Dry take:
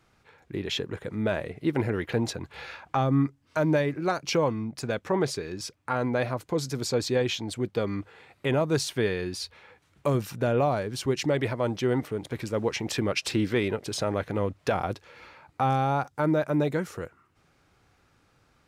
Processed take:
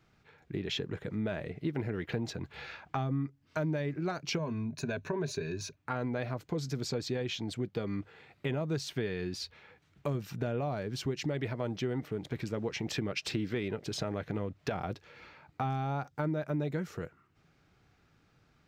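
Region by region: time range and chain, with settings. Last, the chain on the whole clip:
4.38–5.77 ripple EQ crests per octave 1.5, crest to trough 12 dB + compressor 3:1, threshold -24 dBFS
whole clip: fifteen-band EQ 160 Hz +5 dB, 1000 Hz -4 dB, 10000 Hz -12 dB; compressor 4:1, threshold -27 dBFS; notch 530 Hz, Q 12; gain -3 dB

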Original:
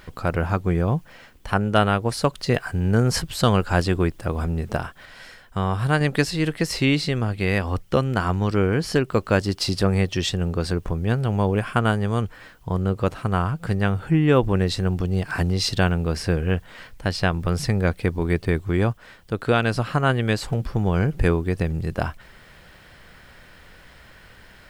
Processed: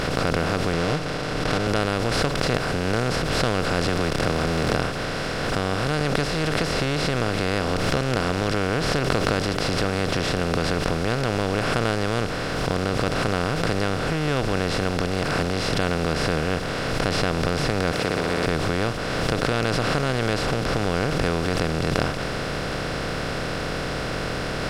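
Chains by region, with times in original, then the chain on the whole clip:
0.73–1.67 switching dead time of 0.26 ms + LPF 4700 Hz + comb 6.6 ms, depth 80%
3.88–4.76 zero-crossing step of -34.5 dBFS + three-band squash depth 100%
17.92–18.46 HPF 400 Hz + flutter echo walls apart 10.5 m, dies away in 1.3 s
whole clip: per-bin compression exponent 0.2; high shelf 9600 Hz -6 dB; backwards sustainer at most 22 dB/s; gain -12.5 dB

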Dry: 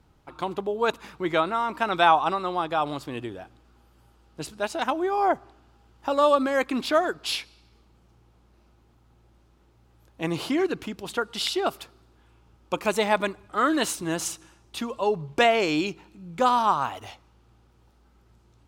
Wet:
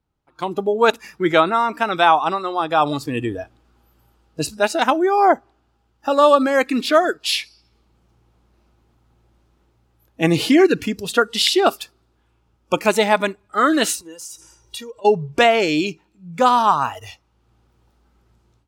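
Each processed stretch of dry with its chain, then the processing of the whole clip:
14–15.05 comb 2.1 ms + compressor 16:1, threshold -40 dBFS
whole clip: spectral noise reduction 15 dB; AGC gain up to 16 dB; gain -1 dB

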